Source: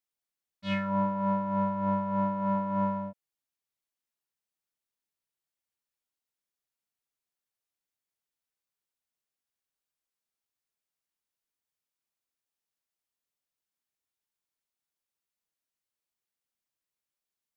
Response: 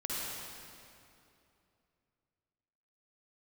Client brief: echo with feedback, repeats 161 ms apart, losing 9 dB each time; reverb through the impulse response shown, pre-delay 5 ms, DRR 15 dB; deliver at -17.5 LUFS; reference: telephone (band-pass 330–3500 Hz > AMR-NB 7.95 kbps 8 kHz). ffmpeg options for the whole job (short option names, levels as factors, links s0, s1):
-filter_complex "[0:a]aecho=1:1:161|322|483|644:0.355|0.124|0.0435|0.0152,asplit=2[s0][s1];[1:a]atrim=start_sample=2205,adelay=5[s2];[s1][s2]afir=irnorm=-1:irlink=0,volume=0.106[s3];[s0][s3]amix=inputs=2:normalize=0,highpass=330,lowpass=3500,volume=6.31" -ar 8000 -c:a libopencore_amrnb -b:a 7950